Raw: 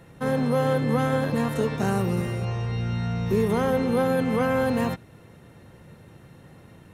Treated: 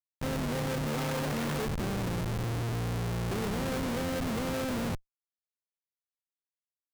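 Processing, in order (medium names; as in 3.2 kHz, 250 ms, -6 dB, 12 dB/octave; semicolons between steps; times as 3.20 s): 0.87–1.65 s: companded quantiser 2-bit; Schmitt trigger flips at -25.5 dBFS; trim -6 dB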